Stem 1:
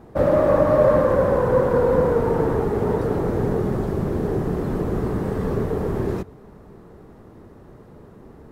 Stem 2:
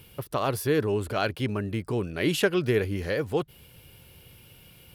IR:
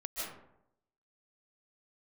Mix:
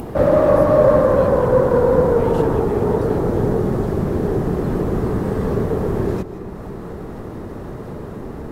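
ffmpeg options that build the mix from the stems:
-filter_complex "[0:a]adynamicequalizer=threshold=0.0141:dfrequency=2100:dqfactor=1.1:tfrequency=2100:tqfactor=1.1:attack=5:release=100:ratio=0.375:range=2:mode=cutabove:tftype=bell,volume=1.33,asplit=2[s0][s1];[s1]volume=0.2[s2];[1:a]volume=0.168[s3];[2:a]atrim=start_sample=2205[s4];[s2][s4]afir=irnorm=-1:irlink=0[s5];[s0][s3][s5]amix=inputs=3:normalize=0,acompressor=mode=upward:threshold=0.112:ratio=2.5"

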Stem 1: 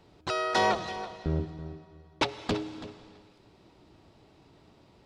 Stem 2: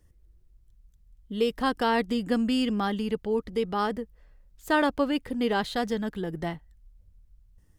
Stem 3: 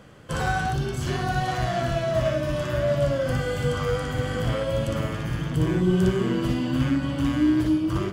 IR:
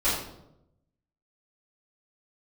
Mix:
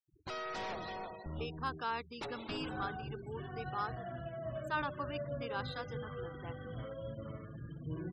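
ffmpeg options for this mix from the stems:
-filter_complex "[0:a]agate=range=0.0224:threshold=0.00178:ratio=3:detection=peak,aeval=exprs='(tanh(70.8*val(0)+0.15)-tanh(0.15))/70.8':c=same,volume=0.794[s0];[1:a]highpass=570,aecho=1:1:0.8:0.58,volume=0.282[s1];[2:a]highpass=58,adelay=2300,volume=0.126[s2];[s0][s1][s2]amix=inputs=3:normalize=0,afftfilt=real='re*gte(hypot(re,im),0.00501)':imag='im*gte(hypot(re,im),0.00501)':win_size=1024:overlap=0.75,highshelf=f=8400:g=-5"

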